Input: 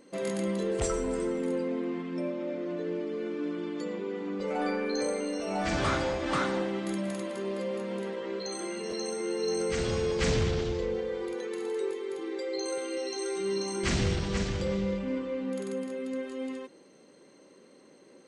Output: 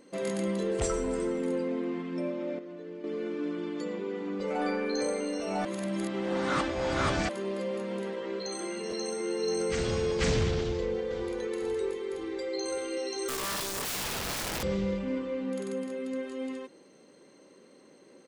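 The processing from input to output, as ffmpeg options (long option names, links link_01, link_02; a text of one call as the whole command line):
ffmpeg -i in.wav -filter_complex "[0:a]asplit=2[link_01][link_02];[link_02]afade=type=in:start_time=10.59:duration=0.01,afade=type=out:start_time=11.22:duration=0.01,aecho=0:1:510|1020|1530|2040|2550:0.298538|0.149269|0.0746346|0.0373173|0.0186586[link_03];[link_01][link_03]amix=inputs=2:normalize=0,asettb=1/sr,asplit=3[link_04][link_05][link_06];[link_04]atrim=end=13.284[link_07];[link_05]atrim=start=13.28:end=14.63,asetpts=PTS-STARTPTS,afade=type=in:duration=0.004:curve=qsin,afade=type=out:start_time=1.346:duration=0.004:curve=qsin,aeval=exprs='(mod(28.2*val(0)+1,2)-1)/28.2':channel_layout=same[link_08];[link_06]atrim=start=14.626[link_09];[link_07][link_08]acrossfade=duration=0.004:curve1=hsin:curve2=qsin[link_10];[link_10][link_09]acrossfade=duration=0.004:curve1=qsin:curve2=hsin,asplit=5[link_11][link_12][link_13][link_14][link_15];[link_11]atrim=end=2.592[link_16];[link_12]atrim=start=2.588:end=3.042,asetpts=PTS-STARTPTS,volume=-9dB[link_17];[link_13]atrim=start=3.038:end=5.652[link_18];[link_14]atrim=start=5.648:end=7.292,asetpts=PTS-STARTPTS,areverse[link_19];[link_15]atrim=start=7.288[link_20];[link_16][link_17]acrossfade=duration=0.004:curve1=hsin:curve2=hsin[link_21];[link_21][link_18]acrossfade=duration=0.004:curve1=hsin:curve2=hsin[link_22];[link_22][link_19]acrossfade=duration=0.004:curve1=hsin:curve2=hsin[link_23];[link_23][link_20]acrossfade=duration=0.004:curve1=hsin:curve2=hsin" out.wav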